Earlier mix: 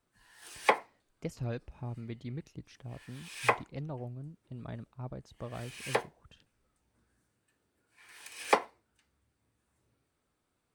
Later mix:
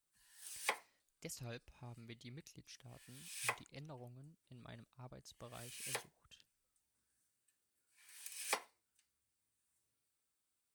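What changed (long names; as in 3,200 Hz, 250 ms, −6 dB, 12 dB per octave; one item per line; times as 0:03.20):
speech +6.0 dB
master: add first-order pre-emphasis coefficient 0.9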